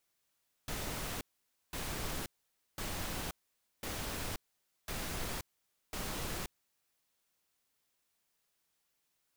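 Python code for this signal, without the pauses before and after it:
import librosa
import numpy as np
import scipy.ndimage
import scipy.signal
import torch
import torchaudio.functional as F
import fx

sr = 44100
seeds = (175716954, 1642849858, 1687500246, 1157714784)

y = fx.noise_burst(sr, seeds[0], colour='pink', on_s=0.53, off_s=0.52, bursts=6, level_db=-39.0)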